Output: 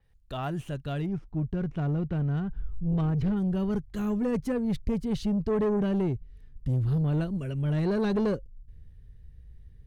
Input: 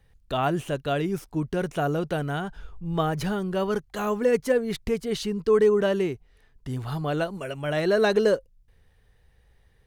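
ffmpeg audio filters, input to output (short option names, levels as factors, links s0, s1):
-filter_complex "[0:a]asubboost=boost=11:cutoff=220,asoftclip=type=tanh:threshold=0.211,asettb=1/sr,asplit=3[s0][s1][s2];[s0]atrim=end=1.064[s3];[s1]atrim=start=1.06:end=3.37,asetpts=PTS-STARTPTS,afade=t=in:d=0.004:c=qsin,afade=t=out:st=2.306:d=0.004:c=qsin,adynamicsmooth=sensitivity=3:basefreq=2100[s4];[s2]atrim=start=3.366[s5];[s3][s4]acrossfade=d=0.004:c1=hsin:c2=qsin[s6];[s6][s5]acrossfade=d=0.004:c1=qsin:c2=hsin,adynamicequalizer=threshold=0.00355:dfrequency=6200:dqfactor=0.7:tfrequency=6200:tqfactor=0.7:attack=5:release=100:ratio=0.375:range=2:mode=cutabove:tftype=highshelf,volume=0.398"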